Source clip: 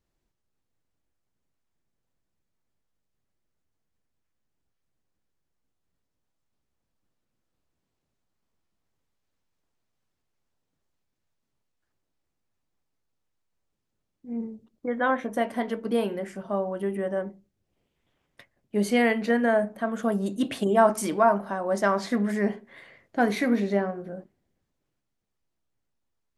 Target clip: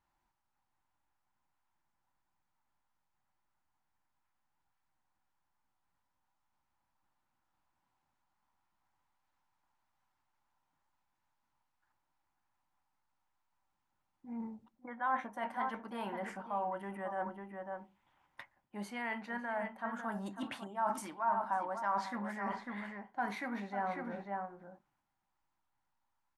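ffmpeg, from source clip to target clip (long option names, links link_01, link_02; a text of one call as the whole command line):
ffmpeg -i in.wav -filter_complex "[0:a]equalizer=frequency=1500:width=0.72:gain=10,asplit=2[link_01][link_02];[link_02]adelay=548.1,volume=-11dB,highshelf=frequency=4000:gain=-12.3[link_03];[link_01][link_03]amix=inputs=2:normalize=0,areverse,acompressor=threshold=-31dB:ratio=5,areverse,superequalizer=7b=0.447:9b=3.55:10b=1.41,volume=-7dB" out.wav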